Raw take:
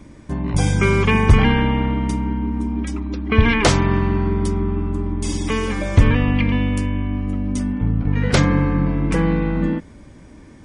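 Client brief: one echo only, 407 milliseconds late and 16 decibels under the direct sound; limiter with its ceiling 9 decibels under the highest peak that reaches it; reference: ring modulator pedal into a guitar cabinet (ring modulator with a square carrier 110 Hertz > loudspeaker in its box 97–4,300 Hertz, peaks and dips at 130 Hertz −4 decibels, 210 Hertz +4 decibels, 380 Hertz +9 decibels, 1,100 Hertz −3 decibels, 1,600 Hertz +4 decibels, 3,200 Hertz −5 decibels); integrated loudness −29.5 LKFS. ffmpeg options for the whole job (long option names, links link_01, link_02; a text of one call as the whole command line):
ffmpeg -i in.wav -af "alimiter=limit=-11dB:level=0:latency=1,aecho=1:1:407:0.158,aeval=exprs='val(0)*sgn(sin(2*PI*110*n/s))':channel_layout=same,highpass=97,equalizer=frequency=130:width_type=q:width=4:gain=-4,equalizer=frequency=210:width_type=q:width=4:gain=4,equalizer=frequency=380:width_type=q:width=4:gain=9,equalizer=frequency=1100:width_type=q:width=4:gain=-3,equalizer=frequency=1600:width_type=q:width=4:gain=4,equalizer=frequency=3200:width_type=q:width=4:gain=-5,lowpass=frequency=4300:width=0.5412,lowpass=frequency=4300:width=1.3066,volume=-10dB" out.wav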